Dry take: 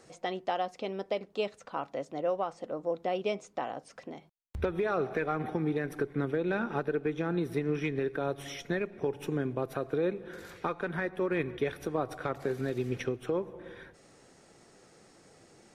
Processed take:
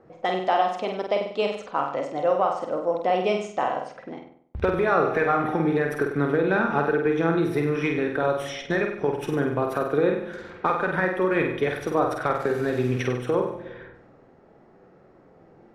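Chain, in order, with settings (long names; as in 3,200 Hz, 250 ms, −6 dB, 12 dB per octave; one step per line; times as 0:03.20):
flutter between parallel walls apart 8.3 metres, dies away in 0.63 s
low-pass that shuts in the quiet parts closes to 1,000 Hz, open at −30 dBFS
dynamic equaliser 1,100 Hz, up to +6 dB, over −43 dBFS, Q 0.71
level +4.5 dB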